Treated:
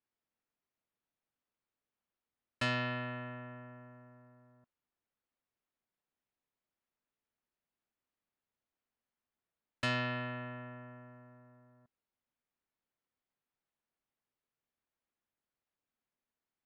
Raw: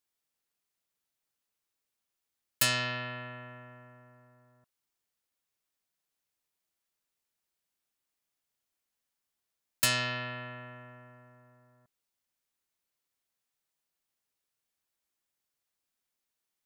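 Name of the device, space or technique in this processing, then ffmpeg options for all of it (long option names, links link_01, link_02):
phone in a pocket: -af "lowpass=3300,equalizer=frequency=240:width_type=o:width=0.32:gain=4,highshelf=frequency=2100:gain=-8.5"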